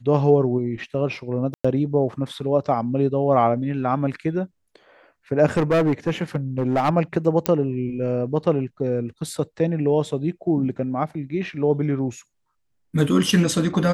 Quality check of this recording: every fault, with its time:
0:01.54–0:01.65: drop-out 105 ms
0:05.57–0:06.90: clipping −15 dBFS
0:07.46: click −4 dBFS

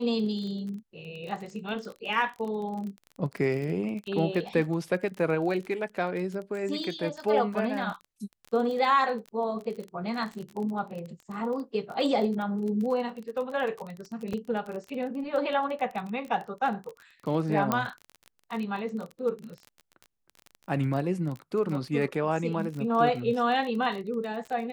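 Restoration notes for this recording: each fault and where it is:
surface crackle 27 per second −34 dBFS
0:14.33: drop-out 4.6 ms
0:17.72: click −11 dBFS

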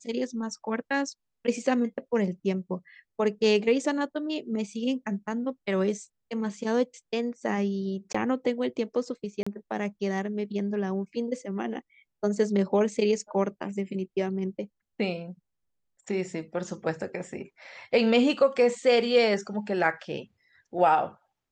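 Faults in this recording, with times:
0:08.13–0:08.14: drop-out 15 ms
0:09.43–0:09.46: drop-out 35 ms

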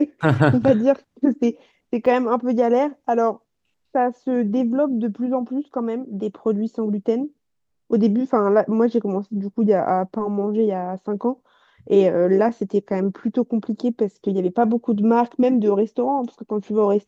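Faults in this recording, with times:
0:02.06: drop-out 3 ms

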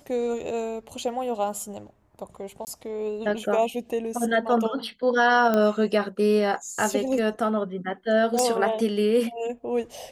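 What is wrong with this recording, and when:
0:02.65–0:02.67: drop-out 19 ms
0:05.54: click −11 dBFS
0:08.39: click −11 dBFS

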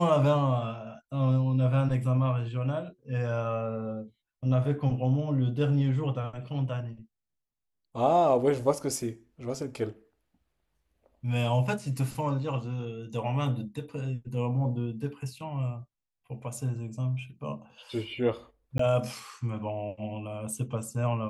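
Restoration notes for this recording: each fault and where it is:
0:18.78–0:18.79: drop-out 14 ms

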